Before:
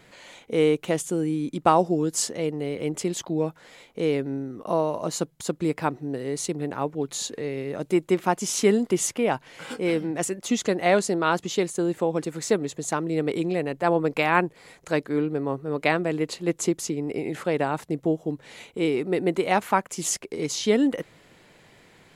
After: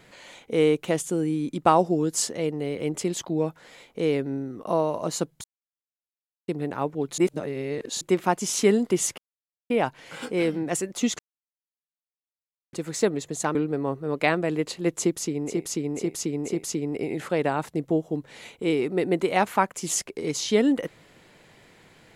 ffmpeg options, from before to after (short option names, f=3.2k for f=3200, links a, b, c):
-filter_complex "[0:a]asplit=12[a][b][c][d][e][f][g][h][i][j][k][l];[a]atrim=end=5.44,asetpts=PTS-STARTPTS,afade=t=out:st=5.436:d=0.004:c=hsin[m];[b]atrim=start=5.44:end=6.48,asetpts=PTS-STARTPTS,volume=0[n];[c]atrim=start=6.48:end=7.182,asetpts=PTS-STARTPTS,afade=t=in:d=0.004:c=hsin[o];[d]atrim=start=7.178:end=8.012,asetpts=PTS-STARTPTS,areverse[p];[e]atrim=start=8.008:end=9.18,asetpts=PTS-STARTPTS,afade=t=out:st=1.168:d=0.004:c=hsin,apad=pad_dur=0.52[q];[f]atrim=start=9.18:end=10.67,asetpts=PTS-STARTPTS,afade=t=in:d=0.004:c=hsin,afade=t=out:st=1.486:d=0.004:c=hsin[r];[g]atrim=start=10.67:end=12.21,asetpts=PTS-STARTPTS,volume=0[s];[h]atrim=start=12.21:end=13.032,asetpts=PTS-STARTPTS,afade=t=in:d=0.004:c=hsin[t];[i]atrim=start=15.168:end=17.29[u];[j]atrim=start=16.56:end=17.29[v];[k]atrim=start=16.56:end=17.29[w];[l]atrim=start=16.56[x];[m][n][o]concat=n=3:v=0:a=1[y];[y][p]acrossfade=d=0.004:c1=hsin:c2=hsin[z];[q][r][s][t]concat=n=4:v=0:a=1[aa];[z][aa]acrossfade=d=0.004:c1=hsin:c2=hsin[ab];[ab][u]acrossfade=d=0.004:c1=hsin:c2=hsin[ac];[ac][v]acrossfade=d=0.24:c1=tri:c2=tri[ad];[ad][w]acrossfade=d=0.24:c1=tri:c2=tri[ae];[ae][x]acrossfade=d=0.24:c1=tri:c2=tri"